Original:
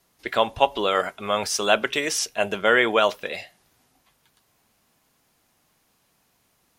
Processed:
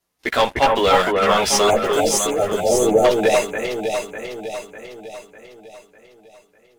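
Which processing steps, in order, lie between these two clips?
one-sided soft clipper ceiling −10.5 dBFS
multi-voice chorus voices 4, 0.41 Hz, delay 14 ms, depth 3.1 ms
leveller curve on the samples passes 3
time-frequency box erased 0:01.70–0:03.05, 900–6,000 Hz
delay that swaps between a low-pass and a high-pass 300 ms, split 2,300 Hz, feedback 70%, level −2 dB

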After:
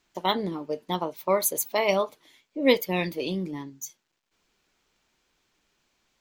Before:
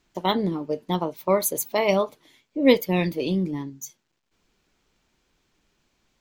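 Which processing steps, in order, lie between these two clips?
low-shelf EQ 360 Hz −8.5 dB

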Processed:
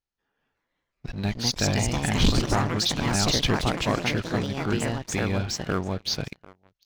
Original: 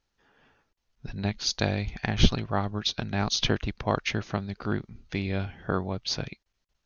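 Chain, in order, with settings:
delay with pitch and tempo change per echo 397 ms, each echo +3 semitones, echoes 3
single-tap delay 744 ms −21 dB
leveller curve on the samples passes 3
level −8.5 dB

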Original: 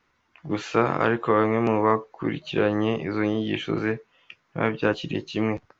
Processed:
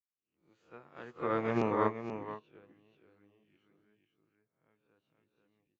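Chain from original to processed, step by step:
peak hold with a rise ahead of every peak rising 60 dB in 0.48 s
source passing by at 0:01.55, 14 m/s, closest 3.3 metres
on a send: single-tap delay 483 ms −3.5 dB
on the sum: expander for the loud parts 2.5 to 1, over −35 dBFS
level −6 dB

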